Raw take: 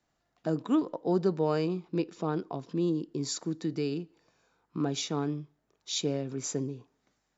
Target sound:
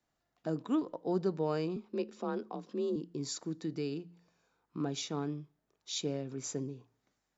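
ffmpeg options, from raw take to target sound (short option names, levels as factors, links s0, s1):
-filter_complex "[0:a]bandreject=f=57.86:t=h:w=4,bandreject=f=115.72:t=h:w=4,bandreject=f=173.58:t=h:w=4,asettb=1/sr,asplit=3[s0][s1][s2];[s0]atrim=end=1.764[s3];[s1]atrim=start=1.76:end=2.96,asetpts=PTS-STARTPTS,afade=t=in:d=0.004:c=qsin,afade=t=out:st=1.196:d=0.004:c=qsin,afreqshift=41[s4];[s2]atrim=start=2.956[s5];[s3][s4]acrossfade=d=0.004:c1=hsin:c2=qsin[s6];[s6][s5]acrossfade=d=0.004:c1=qsin:c2=hsin,volume=0.562"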